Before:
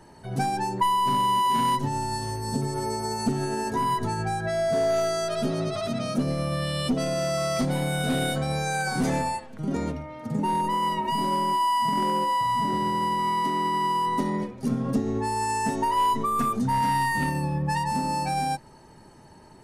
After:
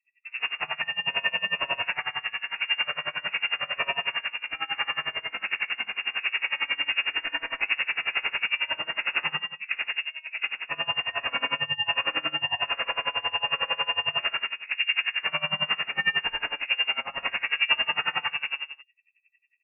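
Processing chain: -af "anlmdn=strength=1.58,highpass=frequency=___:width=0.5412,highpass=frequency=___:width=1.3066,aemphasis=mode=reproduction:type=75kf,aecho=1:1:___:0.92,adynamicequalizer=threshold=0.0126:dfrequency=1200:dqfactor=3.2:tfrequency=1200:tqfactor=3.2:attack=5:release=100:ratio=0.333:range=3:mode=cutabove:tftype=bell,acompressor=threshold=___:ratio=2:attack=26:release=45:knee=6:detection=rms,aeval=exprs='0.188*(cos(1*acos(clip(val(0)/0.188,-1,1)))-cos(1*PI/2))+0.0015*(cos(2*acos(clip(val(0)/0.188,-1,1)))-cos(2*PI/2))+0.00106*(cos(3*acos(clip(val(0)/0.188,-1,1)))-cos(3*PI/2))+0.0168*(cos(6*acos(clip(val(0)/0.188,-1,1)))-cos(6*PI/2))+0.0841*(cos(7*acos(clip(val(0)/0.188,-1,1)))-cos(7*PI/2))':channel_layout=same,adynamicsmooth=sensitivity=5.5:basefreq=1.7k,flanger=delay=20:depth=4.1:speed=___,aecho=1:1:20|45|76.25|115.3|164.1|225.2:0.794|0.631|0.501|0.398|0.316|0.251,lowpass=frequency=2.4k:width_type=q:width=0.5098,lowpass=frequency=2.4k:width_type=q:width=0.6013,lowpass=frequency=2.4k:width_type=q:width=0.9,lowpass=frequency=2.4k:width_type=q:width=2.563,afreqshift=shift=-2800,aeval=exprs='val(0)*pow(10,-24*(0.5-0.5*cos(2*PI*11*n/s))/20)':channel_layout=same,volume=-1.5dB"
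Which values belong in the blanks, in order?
65, 65, 7, -26dB, 1.3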